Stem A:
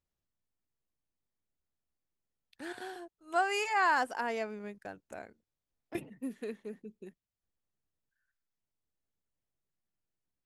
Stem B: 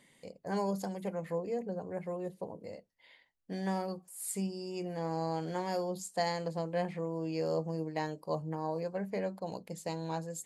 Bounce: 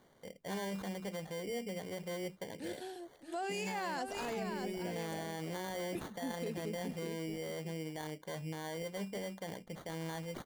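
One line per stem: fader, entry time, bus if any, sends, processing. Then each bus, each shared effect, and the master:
+1.0 dB, 0.00 s, no send, echo send -8.5 dB, peaking EQ 1.3 kHz -14.5 dB 1.2 oct
-1.5 dB, 0.00 s, no send, no echo send, peak limiter -31 dBFS, peak gain reduction 11.5 dB; sample-and-hold 17×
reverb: none
echo: delay 624 ms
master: peak limiter -30 dBFS, peak gain reduction 7.5 dB

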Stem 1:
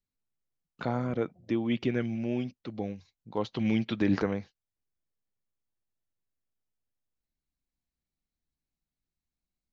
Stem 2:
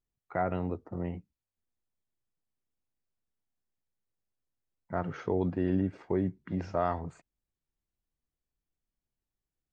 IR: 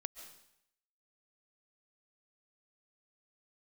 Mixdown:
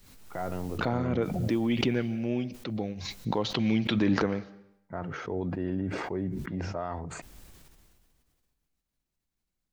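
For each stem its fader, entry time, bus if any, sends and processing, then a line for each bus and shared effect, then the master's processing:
-1.5 dB, 0.00 s, send -6.5 dB, swell ahead of each attack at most 34 dB/s
-2.5 dB, 0.00 s, send -22 dB, peak limiter -20.5 dBFS, peak gain reduction 4.5 dB; decay stretcher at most 27 dB/s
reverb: on, RT60 0.75 s, pre-delay 100 ms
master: saturation -11.5 dBFS, distortion -27 dB

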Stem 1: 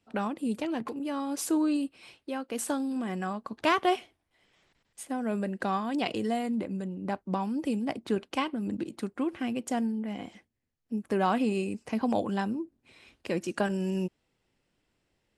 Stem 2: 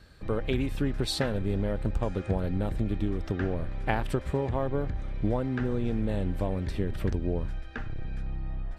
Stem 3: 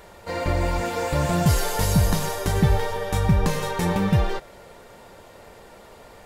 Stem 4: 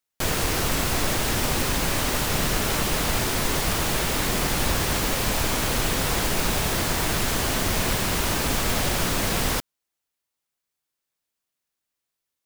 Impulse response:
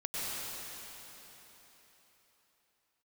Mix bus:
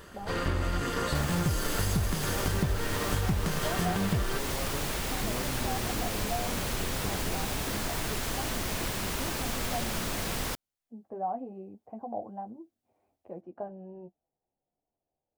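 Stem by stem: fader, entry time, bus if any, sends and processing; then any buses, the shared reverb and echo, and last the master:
-12.0 dB, 0.00 s, no send, resonant low-pass 730 Hz, resonance Q 4.9; flange 0.24 Hz, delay 8.5 ms, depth 6 ms, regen -28%
-9.5 dB, 0.00 s, no send, none
-1.5 dB, 0.00 s, no send, comb filter that takes the minimum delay 0.63 ms
-8.5 dB, 0.95 s, no send, none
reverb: none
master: compression 5:1, threshold -25 dBFS, peak gain reduction 10 dB

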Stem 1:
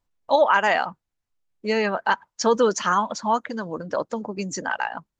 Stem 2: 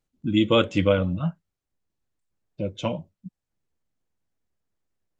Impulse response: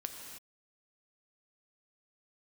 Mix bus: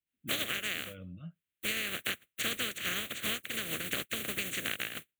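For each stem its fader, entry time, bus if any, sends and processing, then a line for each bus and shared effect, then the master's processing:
+0.5 dB, 0.00 s, no send, spectral contrast reduction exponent 0.19; high-pass 73 Hz; gate with hold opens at -47 dBFS
-18.5 dB, 0.00 s, no send, high-pass 44 Hz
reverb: none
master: peaking EQ 3.1 kHz +5 dB 1.4 oct; static phaser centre 2.2 kHz, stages 4; compression 10:1, threshold -31 dBFS, peak gain reduction 17.5 dB

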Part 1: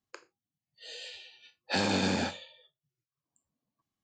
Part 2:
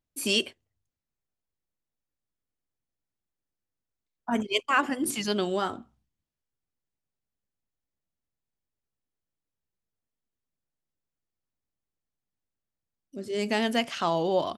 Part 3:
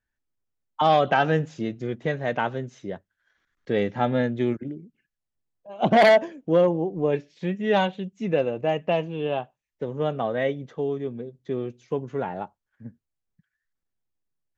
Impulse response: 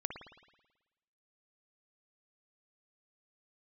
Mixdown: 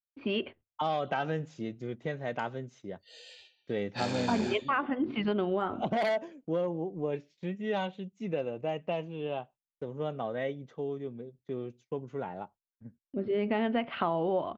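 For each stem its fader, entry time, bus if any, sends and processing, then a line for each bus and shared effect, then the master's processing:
-7.5 dB, 2.25 s, no bus, no send, none
-1.5 dB, 0.00 s, bus A, no send, gate with hold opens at -49 dBFS; Bessel low-pass 1.8 kHz, order 8; level rider gain up to 7 dB
-8.0 dB, 0.00 s, bus A, no send, gate with hold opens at -44 dBFS
bus A: 0.0 dB, band-stop 1.7 kHz, Q 14; compression 4:1, threshold -27 dBFS, peak gain reduction 11 dB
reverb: none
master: gate -56 dBFS, range -9 dB

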